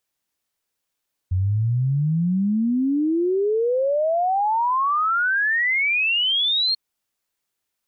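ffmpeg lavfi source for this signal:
-f lavfi -i "aevalsrc='0.133*clip(min(t,5.44-t)/0.01,0,1)*sin(2*PI*89*5.44/log(4300/89)*(exp(log(4300/89)*t/5.44)-1))':d=5.44:s=44100"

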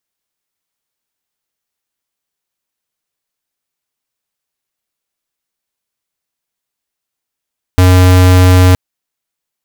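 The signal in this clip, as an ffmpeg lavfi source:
-f lavfi -i "aevalsrc='0.531*(2*lt(mod(91.5*t,1),0.5)-1)':d=0.97:s=44100"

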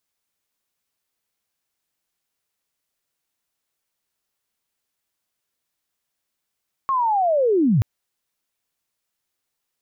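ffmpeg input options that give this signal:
-f lavfi -i "aevalsrc='pow(10,(-17.5+4*t/0.93)/20)*sin(2*PI*(1100*t-1007*t*t/(2*0.93)))':d=0.93:s=44100"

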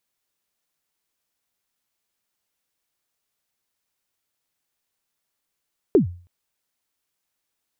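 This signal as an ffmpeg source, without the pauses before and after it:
-f lavfi -i "aevalsrc='0.398*pow(10,-3*t/0.41)*sin(2*PI*(450*0.117/log(88/450)*(exp(log(88/450)*min(t,0.117)/0.117)-1)+88*max(t-0.117,0)))':d=0.32:s=44100"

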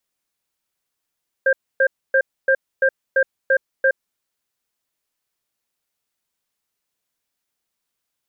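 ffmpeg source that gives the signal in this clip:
-f lavfi -i "aevalsrc='0.178*(sin(2*PI*534*t)+sin(2*PI*1590*t))*clip(min(mod(t,0.34),0.07-mod(t,0.34))/0.005,0,1)':d=2.46:s=44100"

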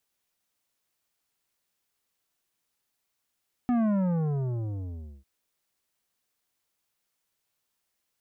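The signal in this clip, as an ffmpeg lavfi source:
-f lavfi -i "aevalsrc='0.0708*clip((1.55-t)/1.41,0,1)*tanh(3.55*sin(2*PI*250*1.55/log(65/250)*(exp(log(65/250)*t/1.55)-1)))/tanh(3.55)':d=1.55:s=44100"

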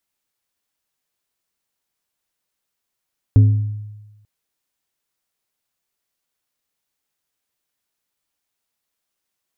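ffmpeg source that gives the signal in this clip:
-f lavfi -i "aevalsrc='0.562*pow(10,-3*t/1.16)*sin(2*PI*105*t)+0.141*pow(10,-3*t/0.611)*sin(2*PI*262.5*t)+0.0355*pow(10,-3*t/0.44)*sin(2*PI*420*t)+0.00891*pow(10,-3*t/0.376)*sin(2*PI*525*t)+0.00224*pow(10,-3*t/0.313)*sin(2*PI*682.5*t)':d=0.89:s=44100"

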